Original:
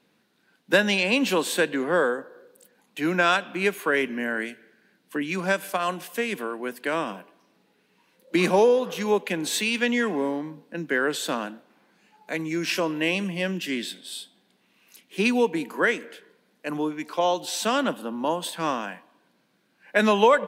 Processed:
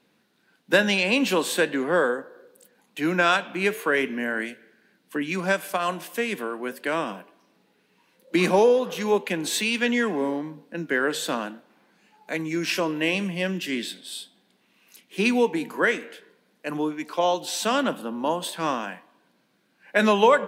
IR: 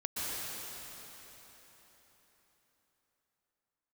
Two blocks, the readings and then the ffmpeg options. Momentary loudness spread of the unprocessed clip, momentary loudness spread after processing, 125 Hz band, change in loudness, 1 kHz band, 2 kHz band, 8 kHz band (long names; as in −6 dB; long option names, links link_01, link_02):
13 LU, 13 LU, +0.5 dB, +0.5 dB, +0.5 dB, +0.5 dB, +0.5 dB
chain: -af "flanger=delay=2.6:depth=8.3:regen=-88:speed=0.41:shape=triangular,volume=5dB"